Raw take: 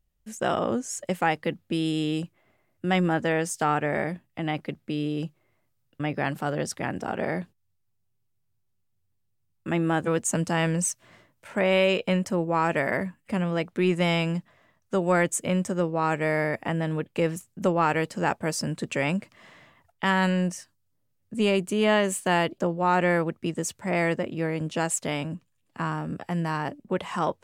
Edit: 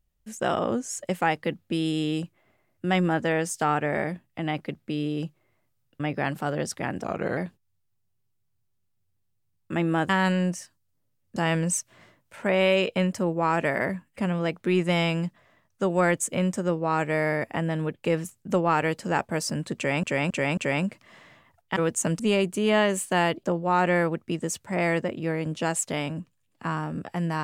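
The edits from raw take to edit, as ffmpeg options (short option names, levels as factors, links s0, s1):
-filter_complex "[0:a]asplit=10[s0][s1][s2][s3][s4][s5][s6][s7][s8][s9];[s0]atrim=end=7.044[s10];[s1]atrim=start=7.04:end=7.33,asetpts=PTS-STARTPTS,asetrate=38367,aresample=44100[s11];[s2]atrim=start=7.326:end=10.052[s12];[s3]atrim=start=20.068:end=21.342[s13];[s4]atrim=start=10.478:end=19.152[s14];[s5]atrim=start=18.878:end=19.152[s15];[s6]atrim=start=18.878:end=19.152[s16];[s7]atrim=start=18.878:end=20.072[s17];[s8]atrim=start=10.048:end=10.482[s18];[s9]atrim=start=21.338[s19];[s10][s11]acrossfade=d=0.004:c1=hsin:c2=hsin[s20];[s20][s12]acrossfade=d=0.004:c1=hsin:c2=hsin[s21];[s21][s13]acrossfade=d=0.004:c1=hsin:c2=hsin[s22];[s22][s14]acrossfade=d=0.004:c1=hsin:c2=hsin[s23];[s23][s15]acrossfade=d=0.004:c1=hsin:c2=hsin[s24];[s24][s16]acrossfade=d=0.004:c1=hsin:c2=hsin[s25];[s25][s17]acrossfade=d=0.004:c1=hsin:c2=hsin[s26];[s26][s18]acrossfade=d=0.004:c1=hsin:c2=hsin[s27];[s27][s19]acrossfade=d=0.004:c1=hsin:c2=hsin"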